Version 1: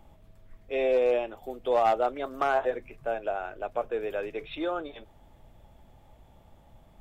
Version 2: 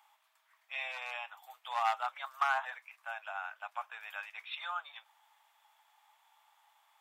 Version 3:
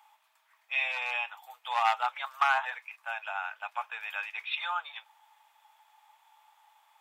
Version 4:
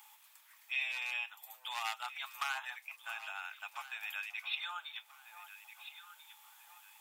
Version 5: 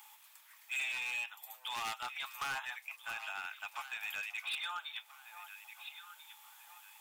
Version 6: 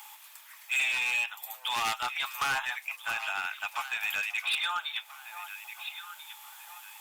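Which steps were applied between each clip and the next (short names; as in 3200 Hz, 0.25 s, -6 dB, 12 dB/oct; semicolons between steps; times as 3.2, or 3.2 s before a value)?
steep high-pass 860 Hz 48 dB/oct
dynamic EQ 2700 Hz, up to +5 dB, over -52 dBFS, Q 0.76; small resonant body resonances 470/870/2500 Hz, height 7 dB; gain +2.5 dB
differentiator; echo with dull and thin repeats by turns 0.67 s, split 1100 Hz, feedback 50%, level -12.5 dB; three-band squash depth 40%; gain +4.5 dB
hard clip -35.5 dBFS, distortion -11 dB; gain +2 dB
gain +9 dB; Opus 64 kbps 48000 Hz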